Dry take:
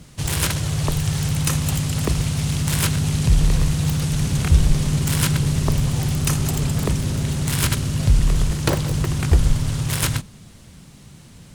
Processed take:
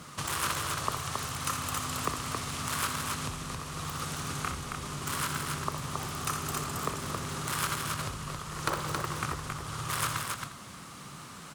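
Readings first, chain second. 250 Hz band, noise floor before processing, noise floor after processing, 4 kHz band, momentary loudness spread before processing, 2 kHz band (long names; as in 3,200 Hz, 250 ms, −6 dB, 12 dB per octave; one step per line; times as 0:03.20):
−16.0 dB, −45 dBFS, −46 dBFS, −8.5 dB, 4 LU, −5.0 dB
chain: single-tap delay 82 ms −15 dB
downward compressor 6 to 1, threshold −29 dBFS, peak gain reduction 19 dB
high-pass filter 310 Hz 6 dB per octave
parametric band 1,200 Hz +14.5 dB 0.61 octaves
multi-tap delay 62/272 ms −8.5/−4 dB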